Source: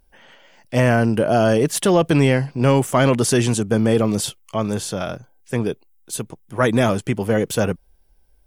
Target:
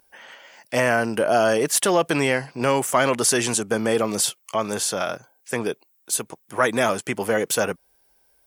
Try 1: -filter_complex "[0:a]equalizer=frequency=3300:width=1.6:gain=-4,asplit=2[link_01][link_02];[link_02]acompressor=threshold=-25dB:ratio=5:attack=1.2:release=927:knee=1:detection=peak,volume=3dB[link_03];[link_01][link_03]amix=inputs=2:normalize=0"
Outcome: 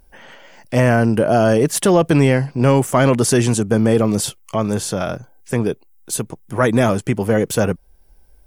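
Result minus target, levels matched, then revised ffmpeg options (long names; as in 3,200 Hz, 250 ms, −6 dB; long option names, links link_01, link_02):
1,000 Hz band −3.0 dB
-filter_complex "[0:a]highpass=frequency=900:poles=1,equalizer=frequency=3300:width=1.6:gain=-4,asplit=2[link_01][link_02];[link_02]acompressor=threshold=-25dB:ratio=5:attack=1.2:release=927:knee=1:detection=peak,volume=3dB[link_03];[link_01][link_03]amix=inputs=2:normalize=0"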